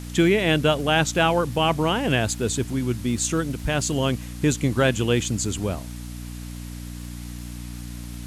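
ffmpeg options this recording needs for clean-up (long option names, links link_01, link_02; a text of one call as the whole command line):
ffmpeg -i in.wav -af "adeclick=threshold=4,bandreject=frequency=59.7:width_type=h:width=4,bandreject=frequency=119.4:width_type=h:width=4,bandreject=frequency=179.1:width_type=h:width=4,bandreject=frequency=238.8:width_type=h:width=4,bandreject=frequency=298.5:width_type=h:width=4,afwtdn=0.0063" out.wav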